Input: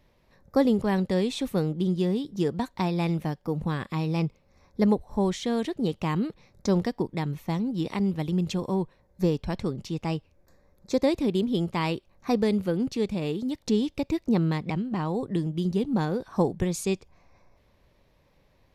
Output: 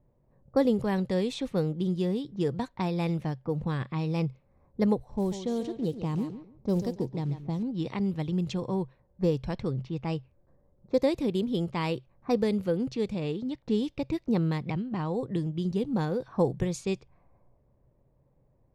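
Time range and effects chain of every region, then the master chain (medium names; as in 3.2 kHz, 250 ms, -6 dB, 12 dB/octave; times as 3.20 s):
5.11–7.63 s: peaking EQ 1.8 kHz -12 dB 1.9 oct + short-mantissa float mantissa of 4-bit + thinning echo 141 ms, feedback 27%, high-pass 190 Hz, level -9 dB
whole clip: dynamic bell 500 Hz, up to +6 dB, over -43 dBFS, Q 7.8; level-controlled noise filter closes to 700 Hz, open at -21.5 dBFS; peaking EQ 130 Hz +11 dB 0.22 oct; trim -3.5 dB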